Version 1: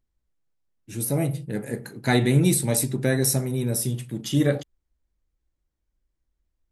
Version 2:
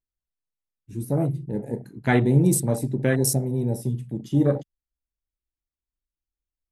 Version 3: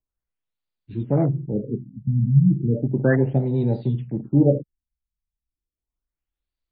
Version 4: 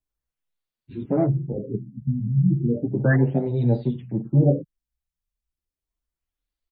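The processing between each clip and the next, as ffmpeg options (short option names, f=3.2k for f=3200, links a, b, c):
-af "afwtdn=0.0316,volume=1dB"
-filter_complex "[0:a]acrossover=split=190|1300|4400[a][b][c][d];[d]acontrast=79[e];[a][b][c][e]amix=inputs=4:normalize=0,afftfilt=real='re*lt(b*sr/1024,220*pow(5000/220,0.5+0.5*sin(2*PI*0.34*pts/sr)))':imag='im*lt(b*sr/1024,220*pow(5000/220,0.5+0.5*sin(2*PI*0.34*pts/sr)))':win_size=1024:overlap=0.75,volume=3.5dB"
-filter_complex "[0:a]asplit=2[a][b];[b]adelay=7.2,afreqshift=1.7[c];[a][c]amix=inputs=2:normalize=1,volume=3dB"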